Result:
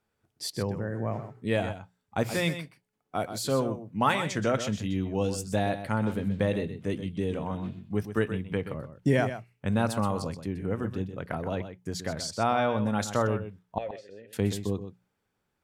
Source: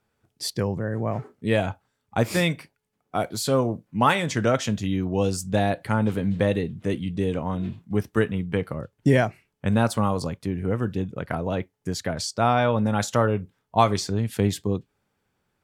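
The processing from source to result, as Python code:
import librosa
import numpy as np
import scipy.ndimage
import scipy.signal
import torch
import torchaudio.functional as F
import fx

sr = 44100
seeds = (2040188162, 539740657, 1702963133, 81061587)

y = fx.vowel_filter(x, sr, vowel='e', at=(13.78, 14.33))
y = fx.hum_notches(y, sr, base_hz=60, count=3)
y = y + 10.0 ** (-10.5 / 20.0) * np.pad(y, (int(126 * sr / 1000.0), 0))[:len(y)]
y = F.gain(torch.from_numpy(y), -5.0).numpy()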